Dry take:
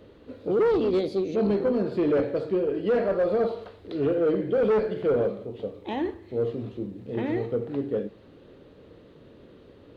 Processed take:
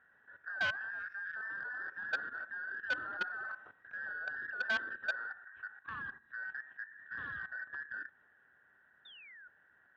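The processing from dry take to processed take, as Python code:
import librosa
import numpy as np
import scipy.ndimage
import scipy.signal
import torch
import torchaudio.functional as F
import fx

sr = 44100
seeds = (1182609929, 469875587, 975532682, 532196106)

y = fx.band_invert(x, sr, width_hz=2000)
y = scipy.signal.sosfilt(scipy.signal.butter(2, 65.0, 'highpass', fs=sr, output='sos'), y)
y = fx.high_shelf(y, sr, hz=2400.0, db=-10.0)
y = fx.spec_paint(y, sr, seeds[0], shape='fall', start_s=9.05, length_s=0.43, low_hz=1400.0, high_hz=3700.0, level_db=-38.0)
y = fx.air_absorb(y, sr, metres=390.0)
y = fx.level_steps(y, sr, step_db=13)
y = fx.transformer_sat(y, sr, knee_hz=1500.0)
y = y * 10.0 ** (-2.5 / 20.0)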